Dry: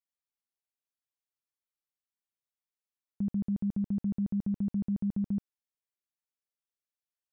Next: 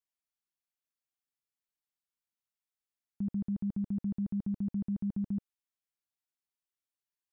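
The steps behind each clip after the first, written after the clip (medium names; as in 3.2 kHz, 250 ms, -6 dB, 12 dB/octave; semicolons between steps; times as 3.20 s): peaking EQ 530 Hz -14.5 dB 0.25 oct; trim -2.5 dB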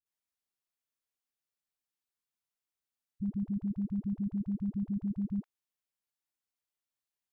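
phase dispersion highs, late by 59 ms, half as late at 320 Hz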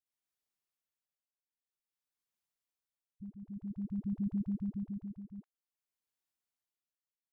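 tremolo triangle 0.52 Hz, depth 85%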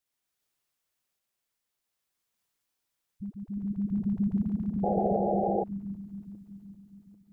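backward echo that repeats 397 ms, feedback 55%, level -3 dB; painted sound noise, 4.83–5.64 s, 330–840 Hz -36 dBFS; trim +8 dB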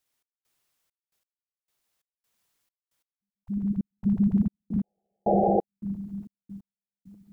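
trance gate "xx..xxxx..x....x" 134 bpm -60 dB; trim +5.5 dB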